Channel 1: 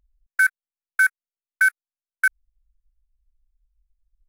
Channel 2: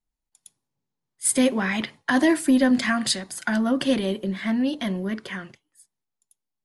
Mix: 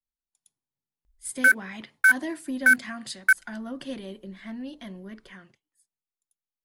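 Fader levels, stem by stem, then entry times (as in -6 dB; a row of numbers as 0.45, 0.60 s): 0.0, -13.5 dB; 1.05, 0.00 s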